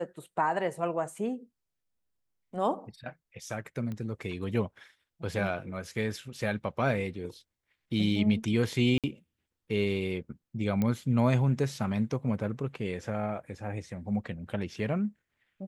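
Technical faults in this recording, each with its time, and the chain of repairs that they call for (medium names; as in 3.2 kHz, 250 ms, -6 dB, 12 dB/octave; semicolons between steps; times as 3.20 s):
3.92 s: pop -26 dBFS
8.98–9.04 s: dropout 57 ms
10.82 s: pop -17 dBFS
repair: de-click; interpolate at 8.98 s, 57 ms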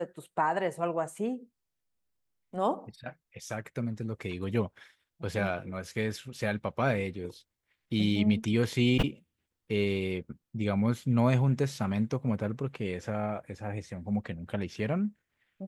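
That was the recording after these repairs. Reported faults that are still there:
nothing left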